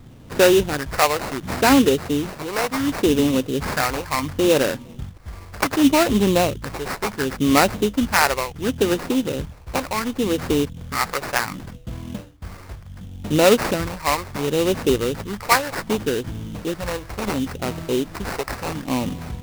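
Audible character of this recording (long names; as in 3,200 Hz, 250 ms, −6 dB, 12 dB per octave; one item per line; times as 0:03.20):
phaser sweep stages 2, 0.69 Hz, lowest notch 210–4,600 Hz
aliases and images of a low sample rate 3,300 Hz, jitter 20%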